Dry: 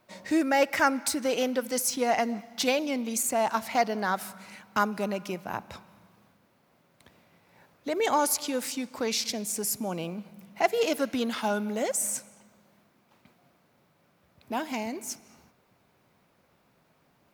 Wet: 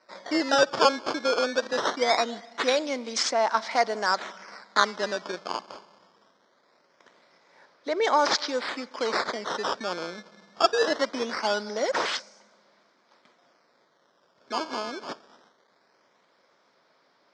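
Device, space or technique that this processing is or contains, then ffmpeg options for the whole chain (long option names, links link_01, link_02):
circuit-bent sampling toy: -af "acrusher=samples=13:mix=1:aa=0.000001:lfo=1:lforange=20.8:lforate=0.22,highpass=460,equalizer=frequency=770:width_type=q:width=4:gain=-5,equalizer=frequency=2700:width_type=q:width=4:gain=-10,equalizer=frequency=5300:width_type=q:width=4:gain=6,lowpass=frequency=5400:width=0.5412,lowpass=frequency=5400:width=1.3066,volume=5.5dB"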